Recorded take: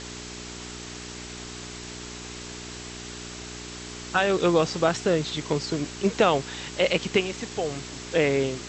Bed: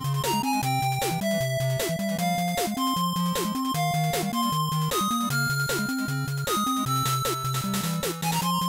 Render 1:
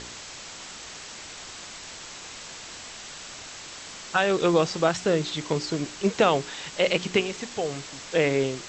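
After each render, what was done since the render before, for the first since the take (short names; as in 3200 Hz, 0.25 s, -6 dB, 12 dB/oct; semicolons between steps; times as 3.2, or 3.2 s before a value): de-hum 60 Hz, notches 7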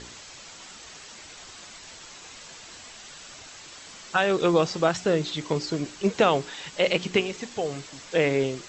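denoiser 6 dB, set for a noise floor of -41 dBFS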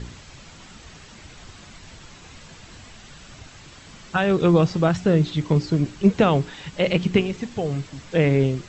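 tone controls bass +15 dB, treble -6 dB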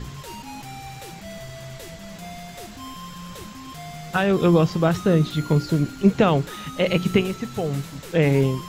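add bed -12.5 dB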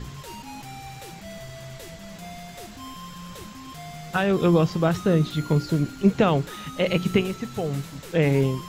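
gain -2 dB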